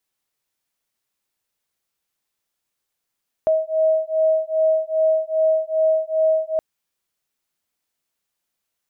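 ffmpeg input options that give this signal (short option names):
-f lavfi -i "aevalsrc='0.112*(sin(2*PI*634*t)+sin(2*PI*636.5*t))':d=3.12:s=44100"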